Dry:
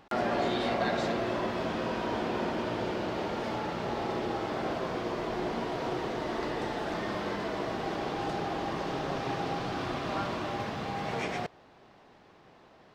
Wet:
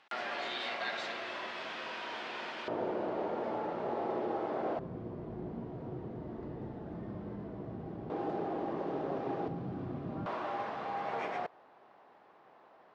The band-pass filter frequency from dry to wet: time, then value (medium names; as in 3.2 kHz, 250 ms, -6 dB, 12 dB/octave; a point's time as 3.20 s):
band-pass filter, Q 0.89
2.6 kHz
from 2.68 s 550 Hz
from 4.79 s 110 Hz
from 8.10 s 400 Hz
from 9.48 s 160 Hz
from 10.26 s 900 Hz